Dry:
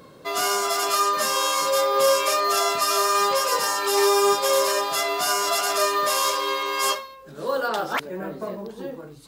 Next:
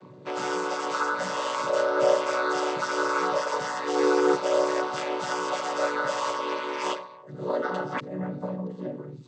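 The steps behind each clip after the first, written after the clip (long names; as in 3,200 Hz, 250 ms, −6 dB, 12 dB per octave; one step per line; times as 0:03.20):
channel vocoder with a chord as carrier minor triad, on B2
level −3.5 dB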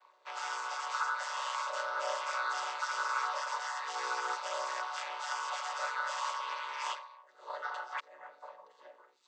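high-pass filter 810 Hz 24 dB per octave
level −5.5 dB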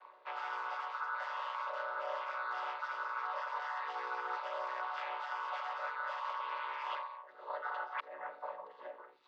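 reversed playback
downward compressor 6 to 1, threshold −43 dBFS, peak gain reduction 13.5 dB
reversed playback
high-frequency loss of the air 370 metres
level +8.5 dB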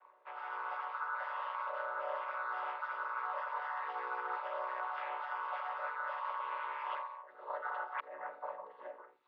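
low-pass filter 2,300 Hz 12 dB per octave
automatic gain control gain up to 6 dB
level −5.5 dB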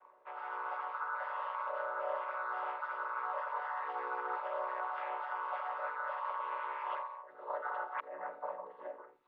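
spectral tilt −2.5 dB per octave
level +1 dB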